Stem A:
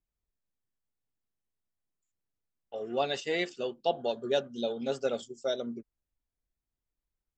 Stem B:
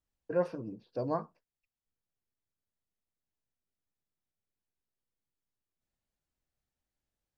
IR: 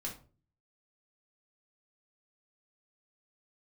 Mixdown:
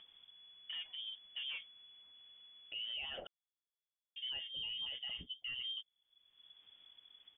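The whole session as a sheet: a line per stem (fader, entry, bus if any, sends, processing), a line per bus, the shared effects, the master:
-1.5 dB, 0.00 s, muted 3.27–4.16, no send, upward compressor, threshold -41 dBFS
-9.5 dB, 0.40 s, no send, reverb removal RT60 0.55 s; compressor 6:1, threshold -34 dBFS, peak gain reduction 10.5 dB; sample leveller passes 2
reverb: off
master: inverted band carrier 3400 Hz; limiter -35.5 dBFS, peak gain reduction 17 dB

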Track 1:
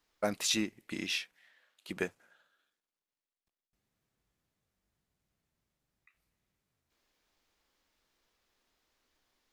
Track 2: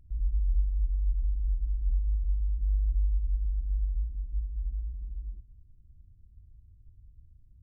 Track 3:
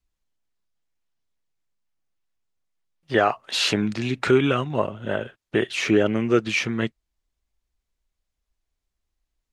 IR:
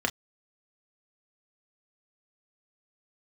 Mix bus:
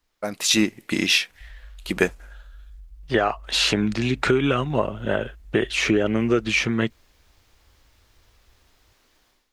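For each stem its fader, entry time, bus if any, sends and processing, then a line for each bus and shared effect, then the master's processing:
+1.0 dB, 0.00 s, no send, AGC gain up to 11 dB
-10.0 dB, 1.30 s, no send, compressor, threshold -34 dBFS, peak gain reduction 12 dB
0.0 dB, 0.00 s, no send, compressor, threshold -19 dBFS, peak gain reduction 7 dB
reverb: off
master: AGC gain up to 3.5 dB

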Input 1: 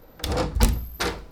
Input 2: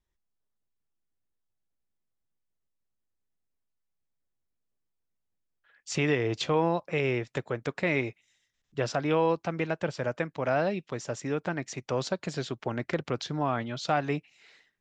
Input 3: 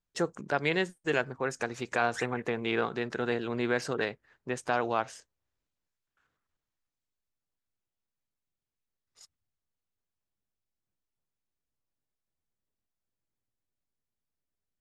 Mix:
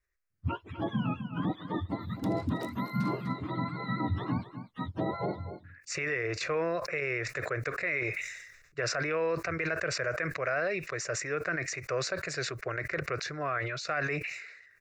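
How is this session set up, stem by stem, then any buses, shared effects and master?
-16.5 dB, 2.00 s, no send, echo send -12 dB, HPF 530 Hz; compressor, threshold -32 dBFS, peak gain reduction 11 dB
-3.0 dB, 0.00 s, no send, no echo send, bell 2400 Hz +13.5 dB 2 oct; fixed phaser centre 870 Hz, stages 6; sustainer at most 55 dB/s
-4.5 dB, 0.30 s, no send, echo send -12.5 dB, spectrum mirrored in octaves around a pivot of 690 Hz; low shelf 340 Hz +8.5 dB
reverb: off
echo: echo 0.249 s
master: limiter -21.5 dBFS, peak gain reduction 8.5 dB

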